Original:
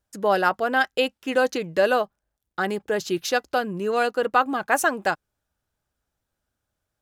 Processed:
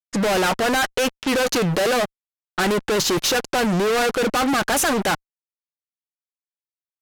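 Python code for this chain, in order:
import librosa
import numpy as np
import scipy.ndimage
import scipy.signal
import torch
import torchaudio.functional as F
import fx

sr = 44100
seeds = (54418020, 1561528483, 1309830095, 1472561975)

y = fx.fuzz(x, sr, gain_db=44.0, gate_db=-47.0)
y = fx.env_lowpass(y, sr, base_hz=2000.0, full_db=-14.5)
y = y * 10.0 ** (-5.0 / 20.0)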